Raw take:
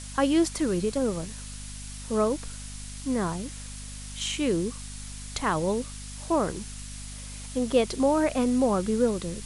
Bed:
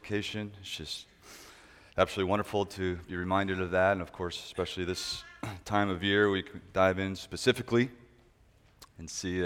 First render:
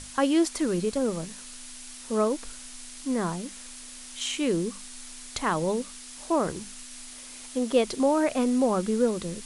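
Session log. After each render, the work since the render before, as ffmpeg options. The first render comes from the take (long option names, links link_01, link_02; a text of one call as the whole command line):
ffmpeg -i in.wav -af "bandreject=frequency=50:width_type=h:width=6,bandreject=frequency=100:width_type=h:width=6,bandreject=frequency=150:width_type=h:width=6,bandreject=frequency=200:width_type=h:width=6" out.wav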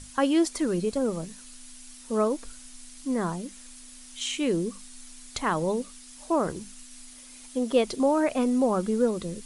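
ffmpeg -i in.wav -af "afftdn=noise_reduction=7:noise_floor=-44" out.wav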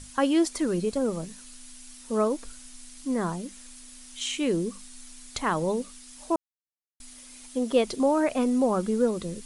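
ffmpeg -i in.wav -filter_complex "[0:a]asplit=3[link_01][link_02][link_03];[link_01]atrim=end=6.36,asetpts=PTS-STARTPTS,afade=type=out:start_time=6.356:duration=0.004:curve=hsin[link_04];[link_02]atrim=start=6.36:end=7,asetpts=PTS-STARTPTS,volume=0[link_05];[link_03]atrim=start=7,asetpts=PTS-STARTPTS,afade=type=in:duration=0.004:curve=hsin[link_06];[link_04][link_05][link_06]concat=n=3:v=0:a=1" out.wav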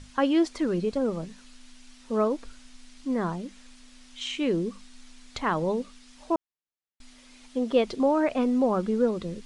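ffmpeg -i in.wav -af "lowpass=4300" out.wav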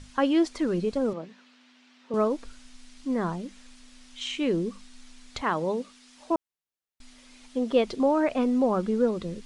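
ffmpeg -i in.wav -filter_complex "[0:a]asettb=1/sr,asplit=3[link_01][link_02][link_03];[link_01]atrim=end=1.134[link_04];[link_02]atrim=start=1.13:end=2.14,asetpts=PTS-STARTPTS,afade=type=in:duration=0.004:curve=qsin,afade=type=out:start_time=1.006:duration=0.004:curve=qsin,highpass=260,lowpass=3300[link_05];[link_03]atrim=start=2.136[link_06];[link_04][link_05]acrossfade=duration=0.004:curve1=hsin:curve2=qsin[link_07];[link_07][link_06]acrossfade=duration=0.004:curve1=qsin:curve2=hsin,asettb=1/sr,asplit=3[link_08][link_09][link_10];[link_08]atrim=end=5.414[link_11];[link_09]atrim=start=5.41:end=6.31,asetpts=PTS-STARTPTS,afade=type=in:duration=0.004:curve=qsin,afade=type=out:start_time=0.896:duration=0.004:curve=qsin,highpass=frequency=190:poles=1[link_12];[link_10]atrim=start=6.306[link_13];[link_11][link_12]acrossfade=duration=0.004:curve1=hsin:curve2=qsin[link_14];[link_14][link_13]acrossfade=duration=0.004:curve1=qsin:curve2=hsin" out.wav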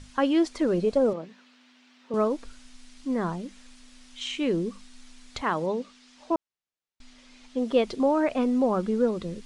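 ffmpeg -i in.wav -filter_complex "[0:a]asettb=1/sr,asplit=3[link_01][link_02][link_03];[link_01]atrim=end=0.614[link_04];[link_02]atrim=start=0.61:end=1.16,asetpts=PTS-STARTPTS,afade=type=in:duration=0.004:curve=qsin,afade=type=out:start_time=0.546:duration=0.004:curve=qsin,equalizer=frequency=610:width=1.5:gain=8[link_05];[link_03]atrim=start=1.156[link_06];[link_04][link_05]acrossfade=duration=0.004:curve1=hsin:curve2=qsin[link_07];[link_07][link_06]acrossfade=duration=0.004:curve1=qsin:curve2=hsin,asettb=1/sr,asplit=3[link_08][link_09][link_10];[link_08]atrim=end=5.664[link_11];[link_09]atrim=start=5.66:end=7.58,asetpts=PTS-STARTPTS,afade=type=in:duration=0.004:curve=qsin,afade=type=out:start_time=1.916:duration=0.004:curve=qsin,lowpass=6600[link_12];[link_10]atrim=start=7.576[link_13];[link_11][link_12]acrossfade=duration=0.004:curve1=hsin:curve2=qsin[link_14];[link_14][link_13]acrossfade=duration=0.004:curve1=qsin:curve2=hsin" out.wav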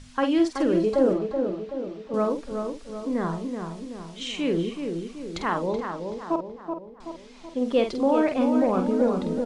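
ffmpeg -i in.wav -filter_complex "[0:a]asplit=2[link_01][link_02];[link_02]adelay=48,volume=-7dB[link_03];[link_01][link_03]amix=inputs=2:normalize=0,asplit=2[link_04][link_05];[link_05]adelay=378,lowpass=frequency=1800:poles=1,volume=-5.5dB,asplit=2[link_06][link_07];[link_07]adelay=378,lowpass=frequency=1800:poles=1,volume=0.54,asplit=2[link_08][link_09];[link_09]adelay=378,lowpass=frequency=1800:poles=1,volume=0.54,asplit=2[link_10][link_11];[link_11]adelay=378,lowpass=frequency=1800:poles=1,volume=0.54,asplit=2[link_12][link_13];[link_13]adelay=378,lowpass=frequency=1800:poles=1,volume=0.54,asplit=2[link_14][link_15];[link_15]adelay=378,lowpass=frequency=1800:poles=1,volume=0.54,asplit=2[link_16][link_17];[link_17]adelay=378,lowpass=frequency=1800:poles=1,volume=0.54[link_18];[link_06][link_08][link_10][link_12][link_14][link_16][link_18]amix=inputs=7:normalize=0[link_19];[link_04][link_19]amix=inputs=2:normalize=0" out.wav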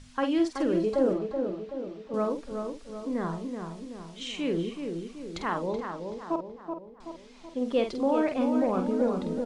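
ffmpeg -i in.wav -af "volume=-4dB" out.wav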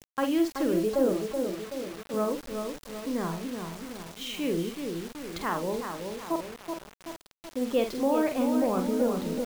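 ffmpeg -i in.wav -af "acrusher=bits=6:mix=0:aa=0.000001" out.wav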